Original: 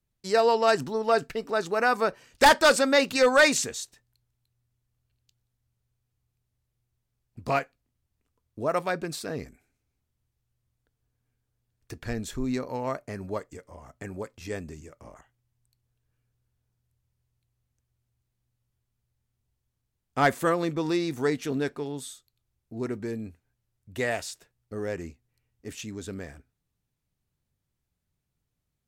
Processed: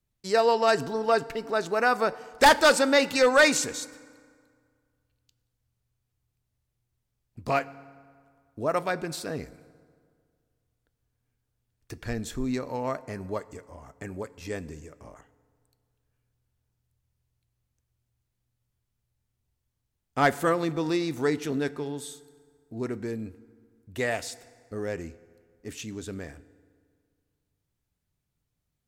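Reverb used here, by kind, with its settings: FDN reverb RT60 2 s, low-frequency decay 1×, high-frequency decay 0.65×, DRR 17 dB

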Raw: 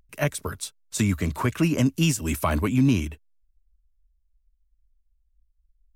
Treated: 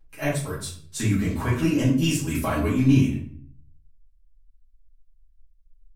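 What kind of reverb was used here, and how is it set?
shoebox room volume 66 m³, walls mixed, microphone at 2.2 m; gain -10.5 dB

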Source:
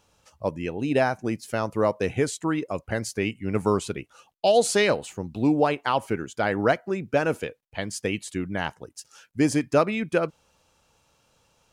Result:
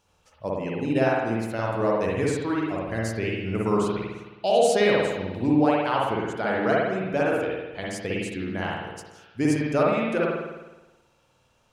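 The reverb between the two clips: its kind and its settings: spring tank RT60 1.1 s, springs 53 ms, chirp 30 ms, DRR -4 dB; gain -5 dB

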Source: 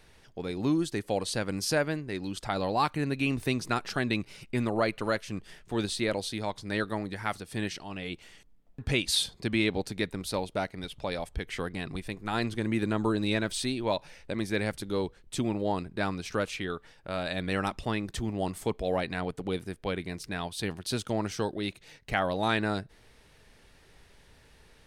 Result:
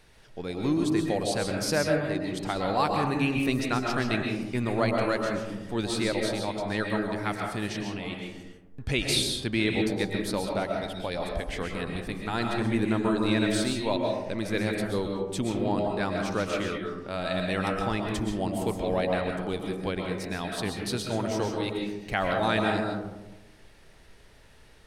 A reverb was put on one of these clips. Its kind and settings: digital reverb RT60 1.1 s, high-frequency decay 0.3×, pre-delay 90 ms, DRR 1 dB

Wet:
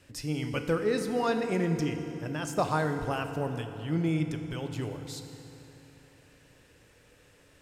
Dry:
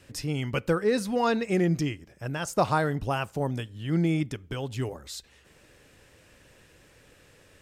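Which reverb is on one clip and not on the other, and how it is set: FDN reverb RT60 3.5 s, high-frequency decay 0.7×, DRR 6 dB; gain -4 dB

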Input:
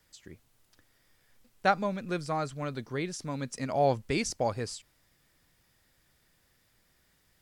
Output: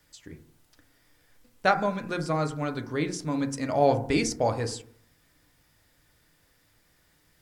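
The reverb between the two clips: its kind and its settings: FDN reverb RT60 0.58 s, low-frequency decay 1.2×, high-frequency decay 0.25×, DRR 5.5 dB; gain +3 dB

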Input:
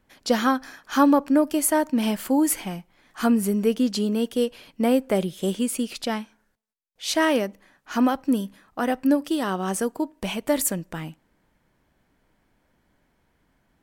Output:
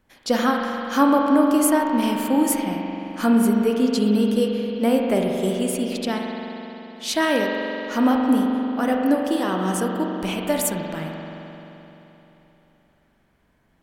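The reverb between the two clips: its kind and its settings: spring tank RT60 3.5 s, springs 43 ms, chirp 25 ms, DRR 0.5 dB

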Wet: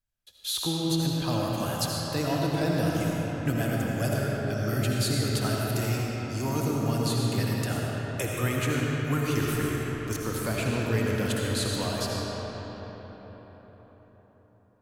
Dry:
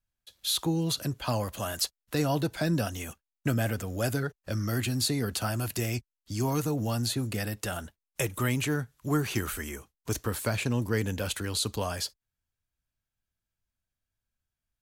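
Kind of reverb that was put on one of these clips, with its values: digital reverb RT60 5 s, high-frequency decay 0.55×, pre-delay 40 ms, DRR -3.5 dB; gain -2.5 dB

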